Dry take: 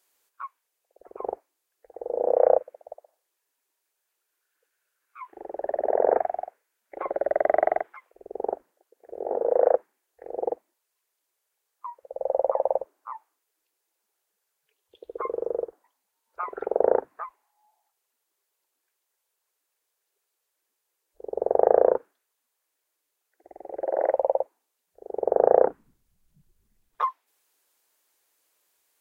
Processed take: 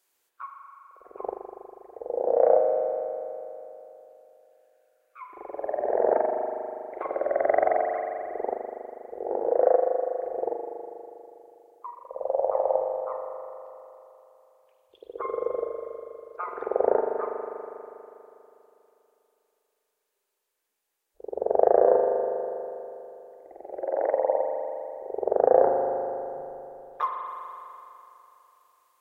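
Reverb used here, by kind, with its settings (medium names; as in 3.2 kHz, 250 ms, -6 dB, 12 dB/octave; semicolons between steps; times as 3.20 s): spring tank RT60 3.1 s, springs 40 ms, chirp 25 ms, DRR 1.5 dB; trim -2 dB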